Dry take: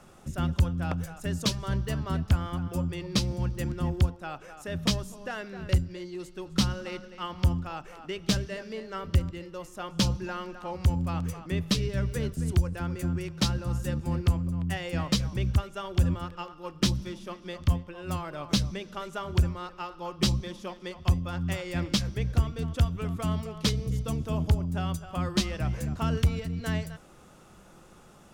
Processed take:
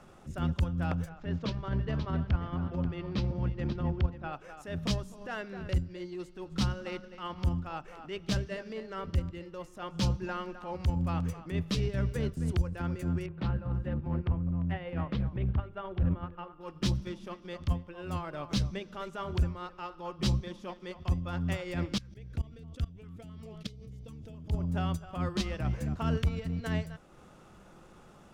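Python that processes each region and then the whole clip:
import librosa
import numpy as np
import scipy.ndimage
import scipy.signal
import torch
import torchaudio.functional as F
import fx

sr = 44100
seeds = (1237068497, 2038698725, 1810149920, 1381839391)

y = fx.chain(x, sr, fx.median_filter(points=5),
    fx.air_absorb(metres=150.0),
    fx.echo_single(ms=535, db=-12.5), at=(1.09, 4.33))
y = fx.chain(y, sr, fx.air_absorb(metres=470.0),
    fx.hum_notches(base_hz=50, count=9),
    fx.doppler_dist(depth_ms=0.29), at=(13.26, 16.61))
y = fx.chain(y, sr, fx.level_steps(step_db=22),
    fx.filter_held_notch(hz=7.6, low_hz=660.0, high_hz=1600.0), at=(21.98, 24.53))
y = fx.high_shelf(y, sr, hz=5500.0, db=-9.5)
y = fx.transient(y, sr, attack_db=-8, sustain_db=-4)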